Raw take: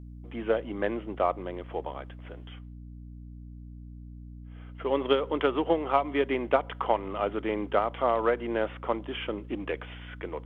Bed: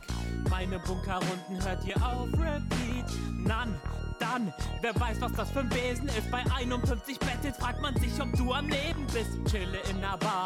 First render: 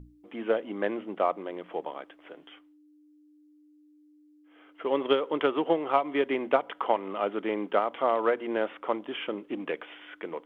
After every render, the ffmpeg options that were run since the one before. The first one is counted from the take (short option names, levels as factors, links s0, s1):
-af "bandreject=f=60:t=h:w=6,bandreject=f=120:t=h:w=6,bandreject=f=180:t=h:w=6,bandreject=f=240:t=h:w=6"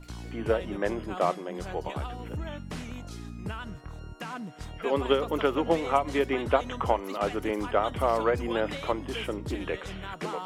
-filter_complex "[1:a]volume=0.473[s0];[0:a][s0]amix=inputs=2:normalize=0"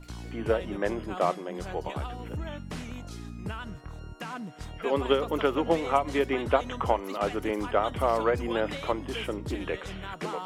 -af anull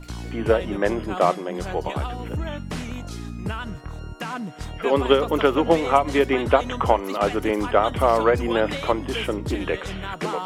-af "volume=2.24,alimiter=limit=0.708:level=0:latency=1"